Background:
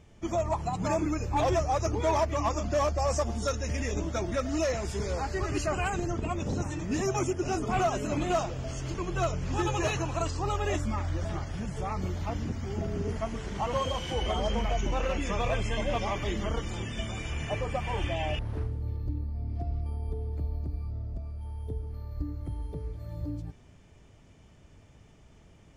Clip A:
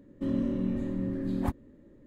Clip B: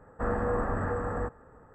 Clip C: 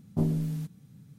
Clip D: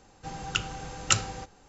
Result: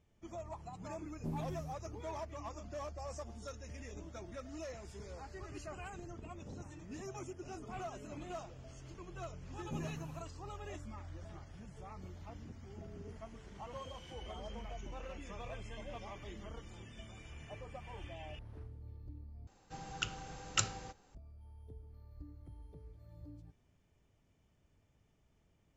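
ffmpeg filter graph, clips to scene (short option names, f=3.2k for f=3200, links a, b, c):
-filter_complex "[3:a]asplit=2[a][b];[0:a]volume=-17dB,asplit=2[c][d];[c]atrim=end=19.474[e];[4:a]atrim=end=1.68,asetpts=PTS-STARTPTS,volume=-9dB[f];[d]atrim=start=21.146[g];[a]atrim=end=1.18,asetpts=PTS-STARTPTS,volume=-14dB,afade=t=in:d=0.004:c=hsin,afade=t=out:st=1.176:d=0.004:c=hsin,adelay=1070[h];[b]atrim=end=1.18,asetpts=PTS-STARTPTS,volume=-15.5dB,afade=t=in:d=0.004:c=hsin,afade=t=out:st=1.176:d=0.004:c=hsin,adelay=420714S[i];[e][f]acrossfade=d=0.004:c1=hsin:c2=hsin[j];[j][g]acrossfade=d=0.004:c1=hsin:c2=hsin[k];[k][h][i]amix=inputs=3:normalize=0"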